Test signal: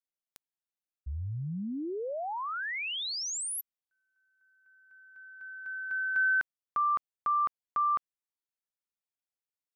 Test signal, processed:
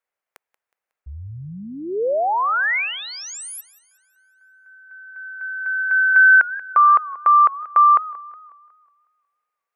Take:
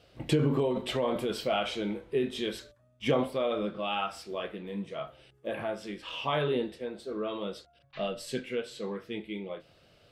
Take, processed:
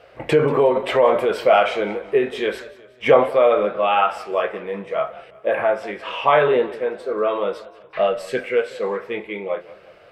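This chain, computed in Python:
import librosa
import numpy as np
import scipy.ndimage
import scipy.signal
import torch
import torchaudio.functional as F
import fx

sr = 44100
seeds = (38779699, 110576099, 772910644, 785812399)

y = fx.band_shelf(x, sr, hz=1000.0, db=14.0, octaves=2.9)
y = fx.echo_warbled(y, sr, ms=183, feedback_pct=47, rate_hz=2.8, cents=118, wet_db=-19.0)
y = F.gain(torch.from_numpy(y), 1.5).numpy()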